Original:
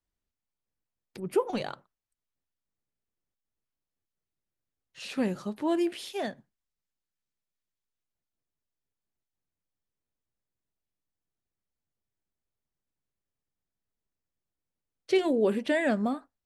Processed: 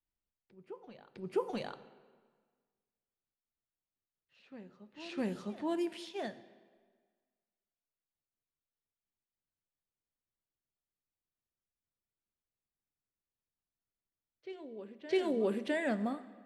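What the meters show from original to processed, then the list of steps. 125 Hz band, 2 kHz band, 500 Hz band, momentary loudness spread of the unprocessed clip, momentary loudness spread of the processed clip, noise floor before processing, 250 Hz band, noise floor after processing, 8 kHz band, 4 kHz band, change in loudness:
−6.5 dB, −6.5 dB, −6.5 dB, 12 LU, 20 LU, below −85 dBFS, −6.5 dB, below −85 dBFS, −9.5 dB, −7.0 dB, −7.5 dB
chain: on a send: backwards echo 657 ms −15 dB
on the sum: dense smooth reverb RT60 1.6 s, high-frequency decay 0.95×, DRR 13.5 dB
low-pass that shuts in the quiet parts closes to 3,000 Hz, open at −25 dBFS
level −7 dB

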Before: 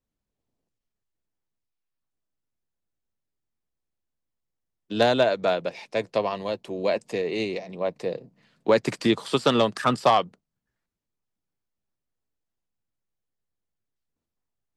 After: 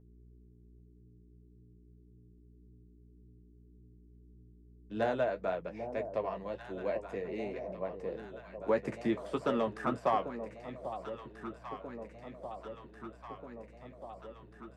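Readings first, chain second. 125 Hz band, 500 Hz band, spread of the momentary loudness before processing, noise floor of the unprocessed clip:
−10.0 dB, −9.5 dB, 11 LU, −85 dBFS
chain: hum with harmonics 60 Hz, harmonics 7, −47 dBFS −6 dB per octave
drawn EQ curve 1,900 Hz 0 dB, 4,100 Hz −15 dB, 6,000 Hz −9 dB
floating-point word with a short mantissa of 8 bits
flanger 1.8 Hz, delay 9.2 ms, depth 6.5 ms, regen −38%
on a send: delay that swaps between a low-pass and a high-pass 793 ms, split 880 Hz, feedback 81%, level −9 dB
on the sum: level −7 dB

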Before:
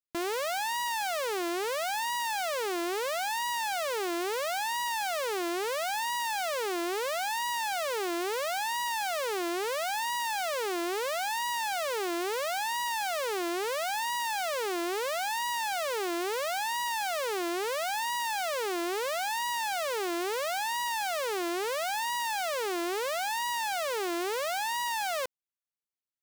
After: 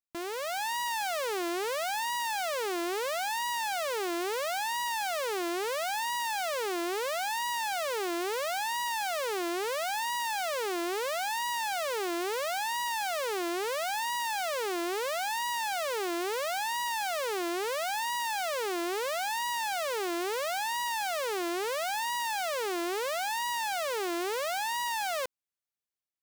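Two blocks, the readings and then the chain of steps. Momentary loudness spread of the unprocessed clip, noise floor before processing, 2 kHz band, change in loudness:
1 LU, −32 dBFS, −0.5 dB, −0.5 dB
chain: automatic gain control gain up to 4.5 dB
level −5 dB

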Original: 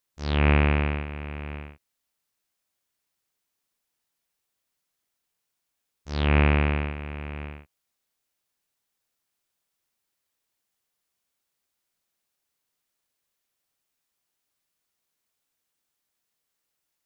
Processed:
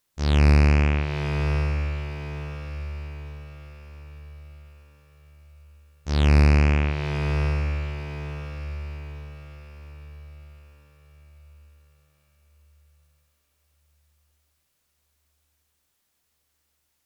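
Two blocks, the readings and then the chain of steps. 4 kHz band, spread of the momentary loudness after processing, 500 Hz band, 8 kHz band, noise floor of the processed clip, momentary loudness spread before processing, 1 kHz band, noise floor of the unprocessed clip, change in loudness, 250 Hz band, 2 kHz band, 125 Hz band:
+2.5 dB, 21 LU, +1.5 dB, can't be measured, −73 dBFS, 17 LU, 0.0 dB, −81 dBFS, +1.0 dB, +3.0 dB, 0.0 dB, +6.0 dB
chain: in parallel at +1 dB: downward compressor, threshold −34 dBFS, peak gain reduction 17 dB
on the sum: soft clipping −10.5 dBFS, distortion −20 dB
harmonic generator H 2 −14 dB, 4 −16 dB, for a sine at −10.5 dBFS
low-shelf EQ 160 Hz +5.5 dB
feedback delay with all-pass diffusion 949 ms, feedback 41%, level −8 dB

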